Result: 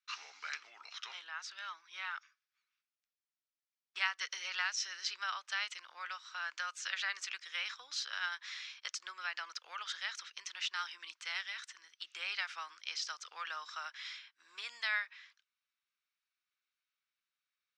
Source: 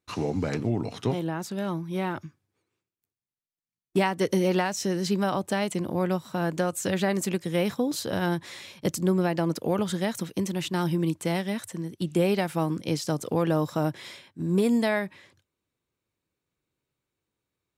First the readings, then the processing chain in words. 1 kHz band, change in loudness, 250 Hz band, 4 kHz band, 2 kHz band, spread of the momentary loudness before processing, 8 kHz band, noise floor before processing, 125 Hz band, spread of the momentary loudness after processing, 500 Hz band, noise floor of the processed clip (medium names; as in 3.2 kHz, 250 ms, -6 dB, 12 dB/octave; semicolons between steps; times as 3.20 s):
-12.0 dB, -12.5 dB, under -40 dB, -2.0 dB, -2.0 dB, 7 LU, -8.5 dB, under -85 dBFS, under -40 dB, 10 LU, -36.0 dB, under -85 dBFS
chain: elliptic band-pass 1.3–5.8 kHz, stop band 80 dB; trim -1.5 dB